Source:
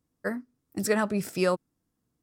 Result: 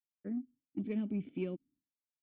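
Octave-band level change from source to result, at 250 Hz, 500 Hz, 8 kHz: -5.5 dB, -15.5 dB, under -40 dB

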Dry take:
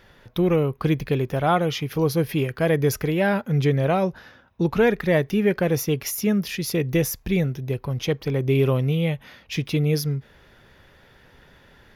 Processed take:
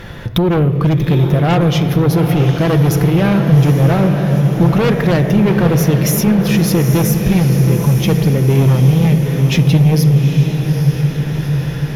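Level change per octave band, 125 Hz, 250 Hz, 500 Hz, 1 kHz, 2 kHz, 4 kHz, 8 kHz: +14.0, +11.0, +5.0, +6.5, +5.5, +8.5, +8.5 dB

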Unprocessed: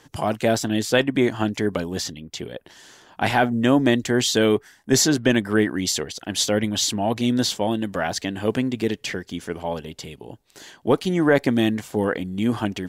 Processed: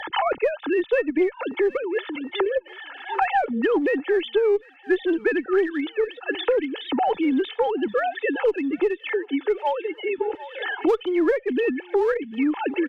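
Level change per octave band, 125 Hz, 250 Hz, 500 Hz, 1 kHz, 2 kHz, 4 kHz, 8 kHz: under -25 dB, -3.5 dB, +2.0 dB, +2.0 dB, -1.0 dB, -9.0 dB, under -35 dB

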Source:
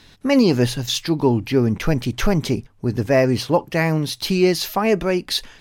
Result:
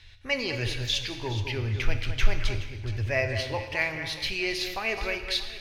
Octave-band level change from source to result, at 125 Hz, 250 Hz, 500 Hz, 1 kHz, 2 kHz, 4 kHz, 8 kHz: -9.0, -20.0, -14.0, -11.5, -1.5, -4.5, -10.0 dB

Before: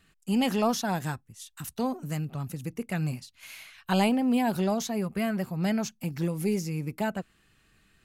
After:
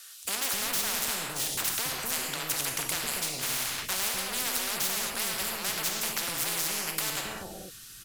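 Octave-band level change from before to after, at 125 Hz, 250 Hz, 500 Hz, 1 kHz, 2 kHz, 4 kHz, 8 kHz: -14.5, -17.0, -9.0, -4.0, +4.5, +9.0, +13.0 dB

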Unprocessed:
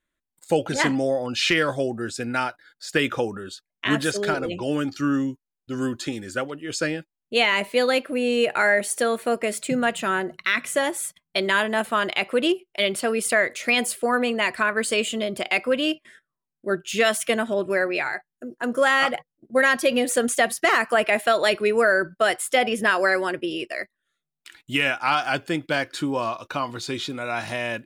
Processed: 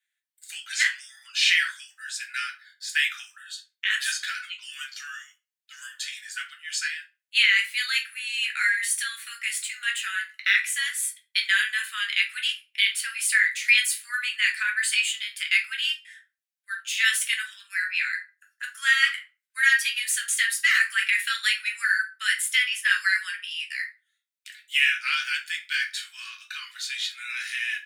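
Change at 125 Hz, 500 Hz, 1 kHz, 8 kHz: under -40 dB, under -40 dB, -15.5 dB, +2.0 dB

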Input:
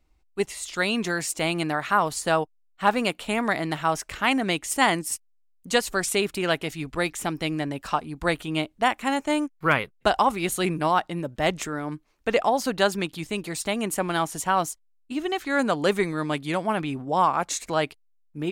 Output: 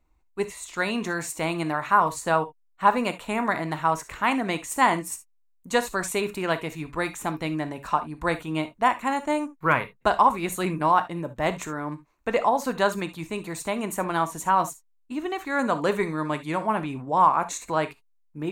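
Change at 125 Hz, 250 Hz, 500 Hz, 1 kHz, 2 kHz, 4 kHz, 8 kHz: -1.0, -1.5, -1.0, +2.5, -1.5, -6.5, -4.0 dB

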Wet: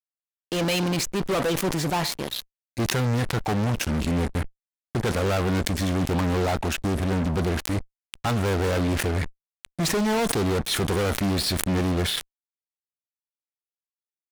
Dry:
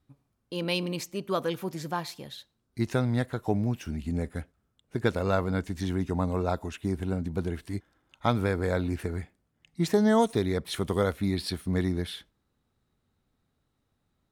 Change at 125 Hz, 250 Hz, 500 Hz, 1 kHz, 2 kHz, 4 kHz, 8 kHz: +5.0, +3.5, +3.0, +4.5, +7.0, +9.0, +13.5 dB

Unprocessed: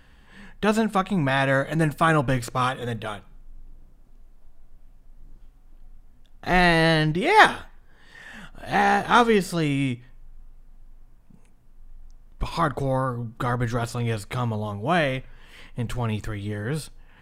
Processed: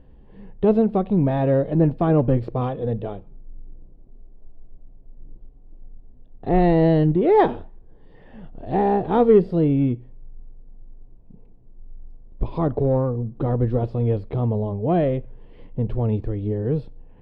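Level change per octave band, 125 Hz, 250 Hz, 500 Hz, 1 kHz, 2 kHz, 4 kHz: +4.5 dB, +5.0 dB, +5.5 dB, -4.0 dB, -16.0 dB, under -15 dB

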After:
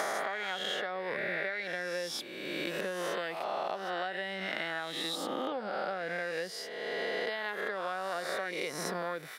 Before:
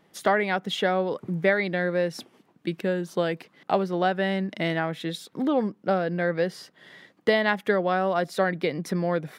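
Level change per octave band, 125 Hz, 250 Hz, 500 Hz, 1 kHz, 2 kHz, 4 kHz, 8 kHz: -19.0, -15.0, -10.5, -8.0, -5.5, -2.0, +1.0 dB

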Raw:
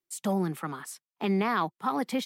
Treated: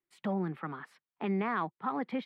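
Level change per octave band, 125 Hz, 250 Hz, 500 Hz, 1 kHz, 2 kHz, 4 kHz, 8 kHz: -4.5 dB, -4.5 dB, -5.0 dB, -5.0 dB, -4.5 dB, -12.5 dB, under -25 dB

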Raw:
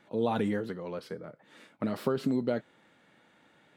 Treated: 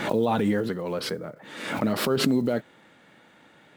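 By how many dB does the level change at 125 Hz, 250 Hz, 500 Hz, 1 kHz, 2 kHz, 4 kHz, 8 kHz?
+6.5, +6.5, +6.0, +7.0, +10.5, +15.0, +18.0 dB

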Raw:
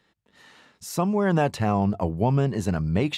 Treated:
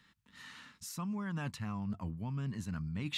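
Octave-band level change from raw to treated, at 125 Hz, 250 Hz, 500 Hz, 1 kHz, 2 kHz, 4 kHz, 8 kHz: -13.5, -14.0, -26.5, -19.5, -12.0, -8.0, -9.5 dB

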